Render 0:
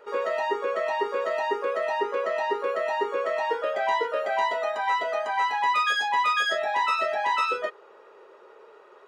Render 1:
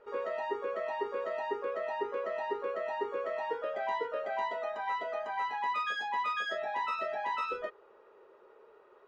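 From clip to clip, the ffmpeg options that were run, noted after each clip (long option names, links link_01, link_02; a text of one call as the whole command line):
ffmpeg -i in.wav -af "aemphasis=mode=reproduction:type=bsi,volume=-9dB" out.wav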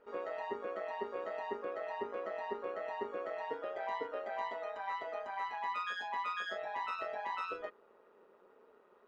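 ffmpeg -i in.wav -af "tremolo=f=180:d=0.571,volume=-2.5dB" out.wav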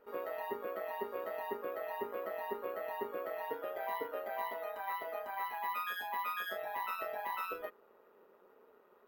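ffmpeg -i in.wav -af "acrusher=samples=3:mix=1:aa=0.000001" out.wav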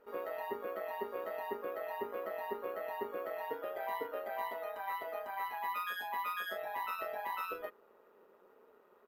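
ffmpeg -i in.wav -af "aresample=32000,aresample=44100" out.wav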